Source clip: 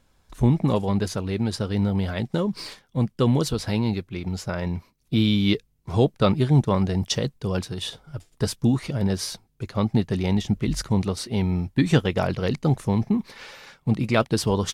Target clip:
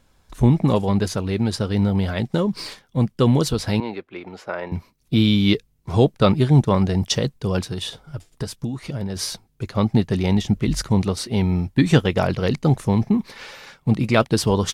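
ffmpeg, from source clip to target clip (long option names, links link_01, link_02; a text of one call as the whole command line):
ffmpeg -i in.wav -filter_complex "[0:a]asettb=1/sr,asplit=3[link_01][link_02][link_03];[link_01]atrim=end=3.804[link_04];[link_02]atrim=start=3.8:end=4.72,asetpts=PTS-STARTPTS,afade=type=in:duration=0.004:curve=qsin,afade=type=out:start_time=0.916:duration=0.004:curve=qsin,acrossover=split=300 3000:gain=0.0631 1 0.141[link_05][link_06][link_07];[link_05][link_06][link_07]amix=inputs=3:normalize=0[link_08];[link_03]atrim=start=4.716[link_09];[link_04][link_08]acrossfade=duration=0.004:curve1=hsin:curve2=qsin[link_10];[link_10][link_09]acrossfade=duration=0.004:curve1=qsin:curve2=hsin,asplit=3[link_11][link_12][link_13];[link_11]afade=type=out:start_time=7.78:duration=0.02[link_14];[link_12]acompressor=threshold=-28dB:ratio=6,afade=type=in:start_time=7.78:duration=0.02,afade=type=out:start_time=9.15:duration=0.02[link_15];[link_13]afade=type=in:start_time=9.15:duration=0.02[link_16];[link_14][link_15][link_16]amix=inputs=3:normalize=0,volume=3.5dB" out.wav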